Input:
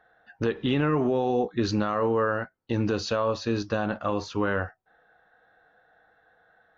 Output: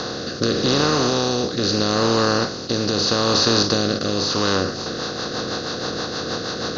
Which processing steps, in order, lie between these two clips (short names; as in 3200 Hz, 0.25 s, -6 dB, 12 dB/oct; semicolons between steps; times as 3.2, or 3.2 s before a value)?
per-bin compression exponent 0.2; rotary speaker horn 0.8 Hz, later 6.3 Hz, at 4.26; band shelf 4900 Hz +13.5 dB 1 oct